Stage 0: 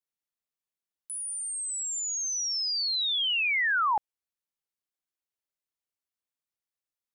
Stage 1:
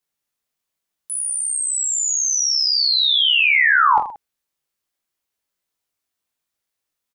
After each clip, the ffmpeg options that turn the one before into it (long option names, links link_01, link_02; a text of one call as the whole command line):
ffmpeg -i in.wav -af "aecho=1:1:20|46|79.8|123.7|180.9:0.631|0.398|0.251|0.158|0.1,volume=9dB" out.wav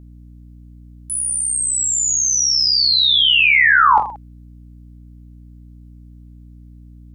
ffmpeg -i in.wav -af "aeval=exprs='val(0)+0.00794*(sin(2*PI*60*n/s)+sin(2*PI*2*60*n/s)/2+sin(2*PI*3*60*n/s)/3+sin(2*PI*4*60*n/s)/4+sin(2*PI*5*60*n/s)/5)':channel_layout=same,volume=2.5dB" out.wav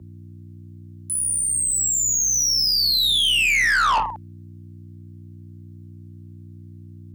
ffmpeg -i in.wav -af "aeval=exprs='(tanh(6.31*val(0)+0.15)-tanh(0.15))/6.31':channel_layout=same,afreqshift=36" out.wav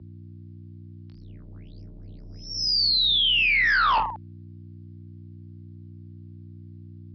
ffmpeg -i in.wav -af "aresample=11025,aresample=44100,volume=-2dB" out.wav